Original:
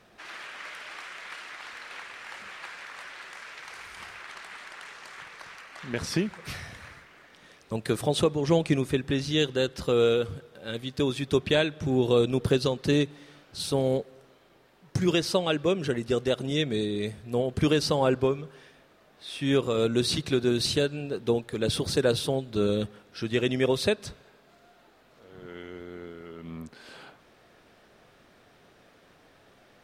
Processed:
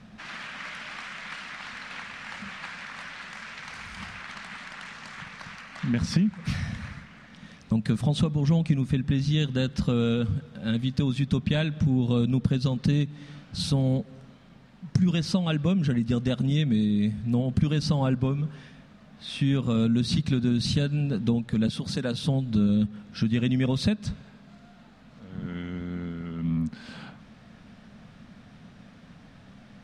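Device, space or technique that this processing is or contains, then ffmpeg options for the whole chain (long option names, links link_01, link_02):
jukebox: -filter_complex "[0:a]lowpass=7400,lowshelf=frequency=280:width_type=q:width=3:gain=9,acompressor=threshold=-26dB:ratio=3,asettb=1/sr,asplit=3[link_01][link_02][link_03];[link_01]atrim=end=21.674[link_04];[link_02]atrim=start=21.67:end=22.23,asetpts=PTS-STARTPTS,afade=type=in:duration=0.004:curve=qsin,afade=type=out:start_time=0.556:duration=0.004:curve=qsin,highpass=frequency=290:poles=1[link_05];[link_03]atrim=start=22.226[link_06];[link_04][link_05]acrossfade=duration=0.004:curve1=hsin:curve2=qsin[link_07];[link_07][link_06]acrossfade=duration=0.004:curve1=qsin:curve2=hsin,volume=3dB"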